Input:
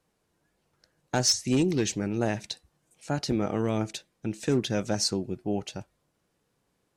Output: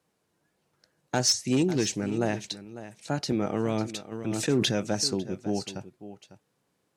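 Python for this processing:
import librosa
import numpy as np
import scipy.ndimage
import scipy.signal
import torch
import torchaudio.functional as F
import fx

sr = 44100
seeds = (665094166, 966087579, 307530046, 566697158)

y = scipy.signal.sosfilt(scipy.signal.butter(2, 97.0, 'highpass', fs=sr, output='sos'), x)
y = y + 10.0 ** (-14.0 / 20.0) * np.pad(y, (int(550 * sr / 1000.0), 0))[:len(y)]
y = fx.sustainer(y, sr, db_per_s=25.0, at=(4.11, 4.71), fade=0.02)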